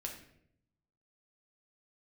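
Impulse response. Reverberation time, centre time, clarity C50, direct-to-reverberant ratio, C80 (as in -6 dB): 0.70 s, 24 ms, 6.5 dB, 0.5 dB, 10.0 dB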